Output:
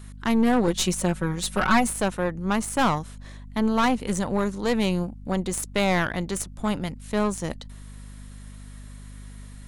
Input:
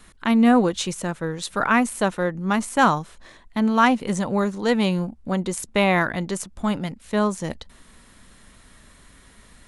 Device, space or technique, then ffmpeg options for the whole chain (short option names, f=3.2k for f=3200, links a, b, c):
valve amplifier with mains hum: -filter_complex "[0:a]highshelf=f=7.2k:g=7,aeval=exprs='(tanh(6.31*val(0)+0.55)-tanh(0.55))/6.31':c=same,aeval=exprs='val(0)+0.01*(sin(2*PI*50*n/s)+sin(2*PI*2*50*n/s)/2+sin(2*PI*3*50*n/s)/3+sin(2*PI*4*50*n/s)/4+sin(2*PI*5*50*n/s)/5)':c=same,asettb=1/sr,asplit=3[a][b][c];[a]atrim=end=0.674[d];[b]atrim=start=0.67:end=1.92,asetpts=PTS-STARTPTS,afade=t=in:d=0.004:c=qsin,afade=t=out:st=1.246:d=0.004:c=qsin,aecho=1:1:5.4:0.96,atrim=end_sample=55125[e];[c]atrim=start=1.916[f];[d][e]acrossfade=d=0.004:c1=hsin:c2=qsin[g];[g][f]acrossfade=d=0.004:c1=qsin:c2=hsin"